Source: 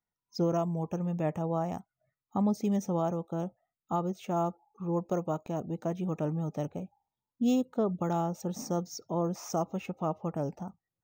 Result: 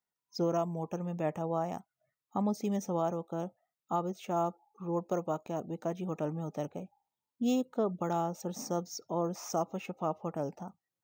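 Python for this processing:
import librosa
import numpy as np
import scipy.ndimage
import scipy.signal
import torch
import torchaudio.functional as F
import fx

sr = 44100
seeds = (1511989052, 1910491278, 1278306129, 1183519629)

y = fx.highpass(x, sr, hz=260.0, slope=6)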